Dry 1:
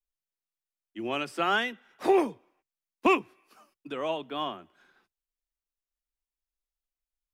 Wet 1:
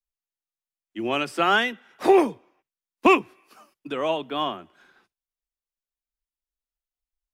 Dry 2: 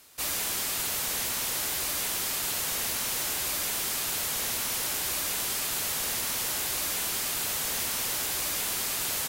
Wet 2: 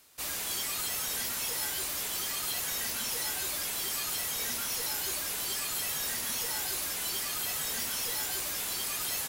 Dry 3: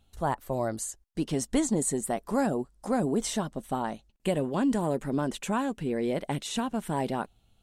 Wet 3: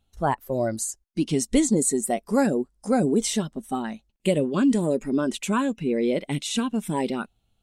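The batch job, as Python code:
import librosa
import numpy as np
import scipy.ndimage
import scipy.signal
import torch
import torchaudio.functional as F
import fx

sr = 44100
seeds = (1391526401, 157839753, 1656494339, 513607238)

y = fx.noise_reduce_blind(x, sr, reduce_db=11)
y = y * librosa.db_to_amplitude(6.0)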